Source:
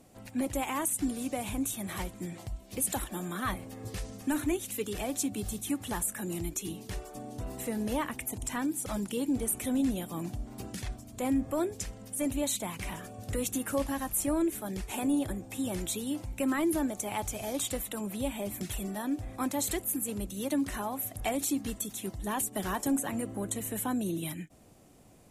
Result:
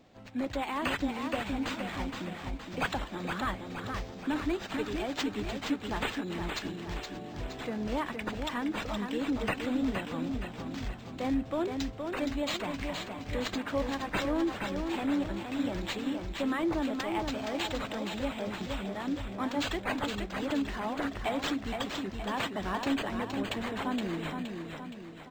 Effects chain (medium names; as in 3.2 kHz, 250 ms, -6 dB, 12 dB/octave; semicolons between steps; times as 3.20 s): bass shelf 340 Hz -3 dB; on a send: feedback delay 469 ms, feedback 50%, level -5.5 dB; on the sum: decimation joined by straight lines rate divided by 4×